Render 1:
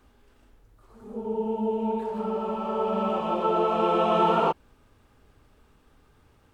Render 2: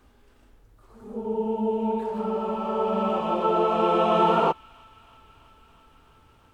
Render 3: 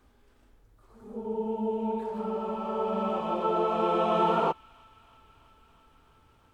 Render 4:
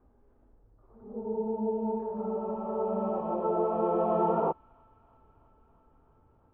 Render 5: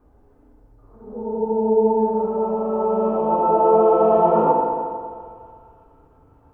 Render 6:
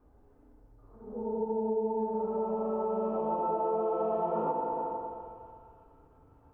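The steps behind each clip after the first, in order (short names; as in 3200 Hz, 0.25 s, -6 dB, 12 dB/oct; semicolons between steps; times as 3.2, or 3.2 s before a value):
thin delay 0.329 s, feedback 77%, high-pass 1800 Hz, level -23 dB; gain +1.5 dB
notch 2800 Hz, Q 26; gain -4.5 dB
Chebyshev low-pass 750 Hz, order 2
FDN reverb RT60 2.1 s, low-frequency decay 0.9×, high-frequency decay 0.85×, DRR -1.5 dB; gain +6.5 dB
compressor 4:1, threshold -22 dBFS, peak gain reduction 10 dB; gain -6.5 dB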